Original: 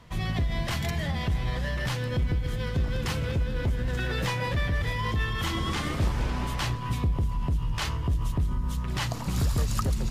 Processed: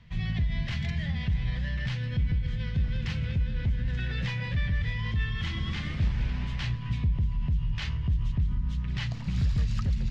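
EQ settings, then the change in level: air absorption 190 m; band shelf 610 Hz -12.5 dB 2.6 oct; 0.0 dB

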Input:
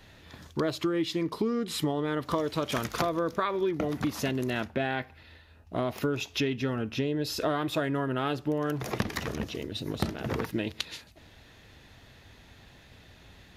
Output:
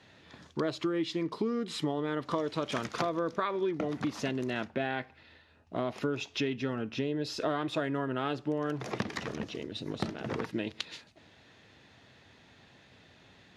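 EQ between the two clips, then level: HPF 130 Hz 12 dB/oct; Chebyshev low-pass 9400 Hz, order 2; air absorption 58 m; -1.5 dB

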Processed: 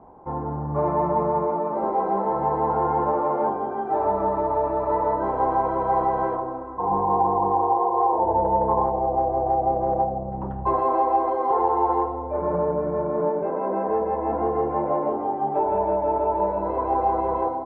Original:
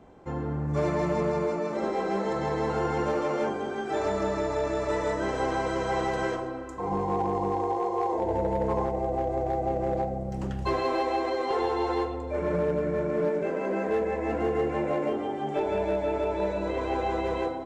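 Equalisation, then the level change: synth low-pass 930 Hz, resonance Q 4.3; 0.0 dB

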